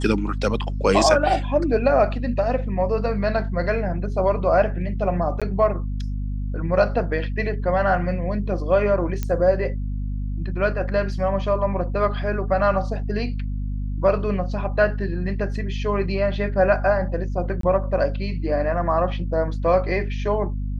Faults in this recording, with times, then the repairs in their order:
hum 50 Hz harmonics 5 -26 dBFS
5.40–5.42 s: dropout 16 ms
9.23 s: pop -12 dBFS
17.61–17.63 s: dropout 23 ms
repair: de-click; de-hum 50 Hz, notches 5; interpolate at 5.40 s, 16 ms; interpolate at 17.61 s, 23 ms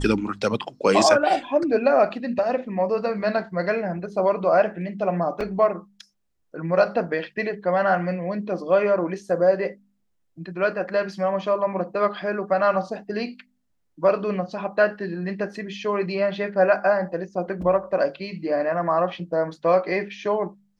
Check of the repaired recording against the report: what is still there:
nothing left

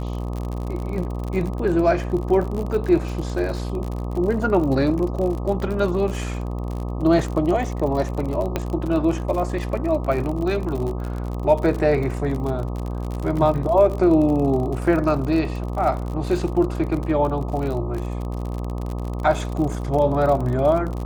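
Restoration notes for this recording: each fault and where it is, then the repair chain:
buzz 60 Hz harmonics 21 -27 dBFS
crackle 50 per s -27 dBFS
8.56 s: pop -9 dBFS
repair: de-click; de-hum 60 Hz, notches 21

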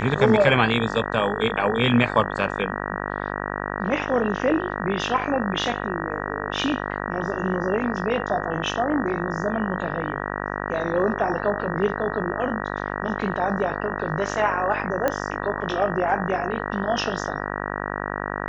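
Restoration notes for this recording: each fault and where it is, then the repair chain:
buzz 50 Hz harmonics 38 -29 dBFS
15.08 s: pop -9 dBFS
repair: de-click; de-hum 50 Hz, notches 38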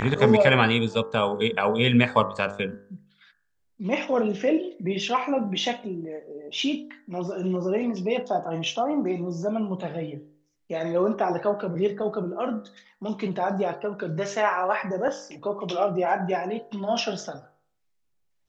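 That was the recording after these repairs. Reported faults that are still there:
nothing left

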